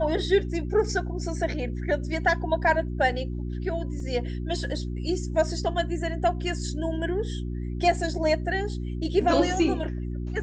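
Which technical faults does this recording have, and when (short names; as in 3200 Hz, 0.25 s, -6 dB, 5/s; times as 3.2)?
hum 60 Hz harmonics 6 -31 dBFS
4 gap 2.6 ms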